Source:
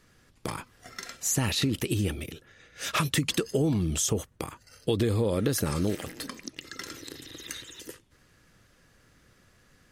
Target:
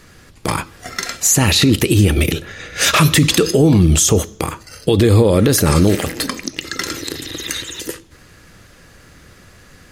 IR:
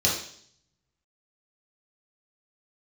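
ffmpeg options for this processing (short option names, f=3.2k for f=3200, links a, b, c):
-filter_complex "[0:a]asettb=1/sr,asplit=3[a][b][c];[a]atrim=end=2.164[d];[b]atrim=start=2.16:end=3.51,asetpts=PTS-STARTPTS,afade=t=in:d=0.004:c=qsin,afade=t=out:st=1.346:d=0.004:c=qsin,acontrast=51[e];[c]atrim=start=3.506[f];[d][e]acrossfade=d=0.004:c1=hsin:c2=qsin[g];[g][f]acrossfade=d=0.004:c1=qsin:c2=hsin,asplit=2[h][i];[1:a]atrim=start_sample=2205[j];[i][j]afir=irnorm=-1:irlink=0,volume=-29.5dB[k];[h][k]amix=inputs=2:normalize=0,alimiter=level_in=18.5dB:limit=-1dB:release=50:level=0:latency=1,volume=-2.5dB"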